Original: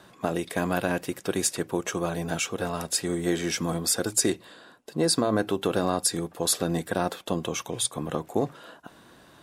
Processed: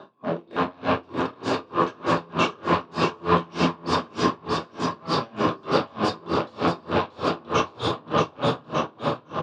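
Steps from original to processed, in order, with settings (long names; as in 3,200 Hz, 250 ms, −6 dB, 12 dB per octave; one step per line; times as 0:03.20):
parametric band 460 Hz +11 dB 2.9 octaves
downward compressor 2 to 1, threshold −30 dBFS, peak gain reduction 11.5 dB
transient designer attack −3 dB, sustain +4 dB
automatic gain control gain up to 9 dB
wave folding −18.5 dBFS
loudspeaker in its box 110–4,400 Hz, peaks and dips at 120 Hz +6 dB, 260 Hz +3 dB, 1,100 Hz +9 dB, 2,000 Hz −9 dB
on a send: bouncing-ball delay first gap 630 ms, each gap 0.9×, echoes 5
on the sum: rectangular room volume 260 cubic metres, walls mixed, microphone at 1.3 metres
tremolo with a sine in dB 3.3 Hz, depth 32 dB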